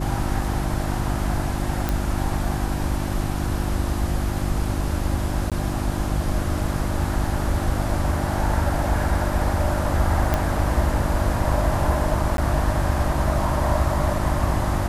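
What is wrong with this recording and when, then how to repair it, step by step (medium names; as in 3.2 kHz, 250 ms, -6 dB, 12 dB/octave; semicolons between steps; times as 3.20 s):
hum 50 Hz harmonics 7 -27 dBFS
1.89 s: pop
5.50–5.52 s: dropout 17 ms
10.34 s: pop -7 dBFS
12.37–12.38 s: dropout 12 ms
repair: de-click; de-hum 50 Hz, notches 7; interpolate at 5.50 s, 17 ms; interpolate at 12.37 s, 12 ms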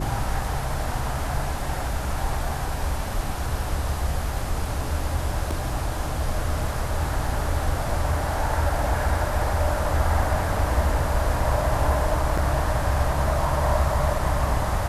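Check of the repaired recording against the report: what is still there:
nothing left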